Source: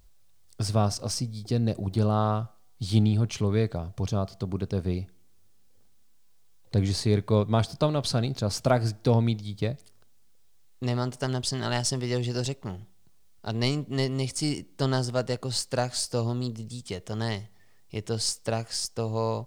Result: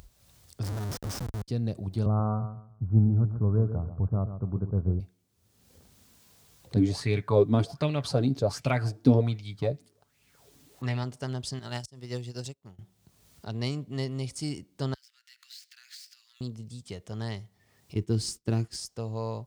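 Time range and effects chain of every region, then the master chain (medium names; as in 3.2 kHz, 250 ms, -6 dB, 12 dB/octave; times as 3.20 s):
0.63–1.48 s: Schmitt trigger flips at -32.5 dBFS + peaking EQ 2.6 kHz -6.5 dB 0.97 oct
2.06–5.00 s: steep low-pass 1.5 kHz 96 dB/octave + bass shelf 130 Hz +9 dB + feedback delay 135 ms, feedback 25%, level -10.5 dB
6.76–11.04 s: comb 7 ms, depth 40% + sweeping bell 1.3 Hz 250–2600 Hz +16 dB
11.59–12.79 s: treble shelf 5.6 kHz +9 dB + slow attack 148 ms + upward expansion 2.5:1, over -40 dBFS
14.94–16.41 s: median filter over 5 samples + compression 12:1, threshold -36 dBFS + steep high-pass 1.7 kHz
17.95–18.76 s: companding laws mixed up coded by mu + expander -33 dBFS + resonant low shelf 440 Hz +7 dB, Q 3
whole clip: high-pass 44 Hz; bass shelf 210 Hz +5.5 dB; upward compressor, threshold -34 dBFS; trim -7.5 dB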